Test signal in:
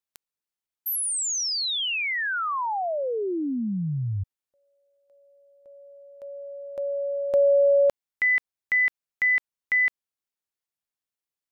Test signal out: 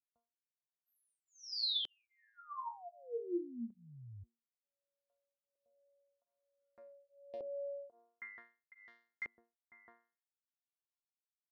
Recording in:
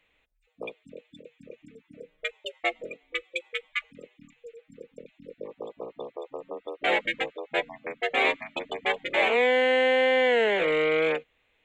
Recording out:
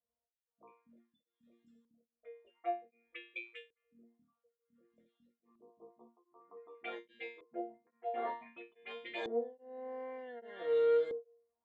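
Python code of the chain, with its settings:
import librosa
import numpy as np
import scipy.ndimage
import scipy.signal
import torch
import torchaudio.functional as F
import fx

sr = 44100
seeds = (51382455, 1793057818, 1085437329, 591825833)

y = scipy.signal.sosfilt(scipy.signal.butter(4, 56.0, 'highpass', fs=sr, output='sos'), x)
y = fx.env_phaser(y, sr, low_hz=350.0, high_hz=2500.0, full_db=-22.5)
y = fx.resonator_bank(y, sr, root=58, chord='fifth', decay_s=0.37)
y = fx.filter_lfo_lowpass(y, sr, shape='saw_up', hz=0.54, low_hz=400.0, high_hz=6000.0, q=1.3)
y = y * np.abs(np.cos(np.pi * 1.2 * np.arange(len(y)) / sr))
y = F.gain(torch.from_numpy(y), 6.0).numpy()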